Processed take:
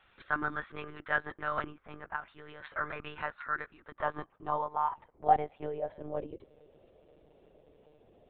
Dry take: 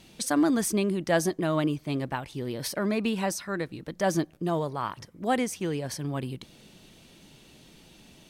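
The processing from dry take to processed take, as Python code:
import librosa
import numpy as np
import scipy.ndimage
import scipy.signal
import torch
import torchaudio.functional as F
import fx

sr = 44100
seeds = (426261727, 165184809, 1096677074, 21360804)

y = fx.filter_sweep_bandpass(x, sr, from_hz=1400.0, to_hz=510.0, start_s=3.59, end_s=6.42, q=3.8)
y = fx.lpc_monotone(y, sr, seeds[0], pitch_hz=150.0, order=16)
y = fx.high_shelf(y, sr, hz=2500.0, db=-11.0, at=(1.66, 2.28))
y = y * librosa.db_to_amplitude(5.5)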